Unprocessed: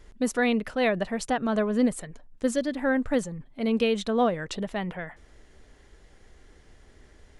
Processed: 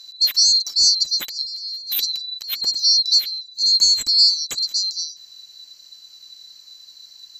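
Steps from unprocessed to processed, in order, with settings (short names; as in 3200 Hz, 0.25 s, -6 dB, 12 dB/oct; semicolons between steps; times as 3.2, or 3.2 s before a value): band-swap scrambler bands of 4000 Hz; high shelf 2400 Hz +10.5 dB; 1.28–2.67 negative-ratio compressor -28 dBFS, ratio -1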